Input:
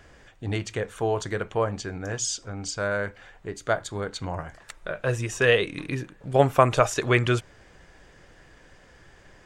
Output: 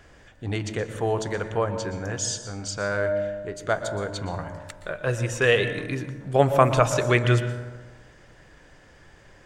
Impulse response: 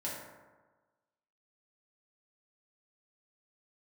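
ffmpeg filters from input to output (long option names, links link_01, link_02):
-filter_complex "[0:a]asplit=2[link_01][link_02];[1:a]atrim=start_sample=2205,lowshelf=frequency=190:gain=8.5,adelay=118[link_03];[link_02][link_03]afir=irnorm=-1:irlink=0,volume=-12dB[link_04];[link_01][link_04]amix=inputs=2:normalize=0"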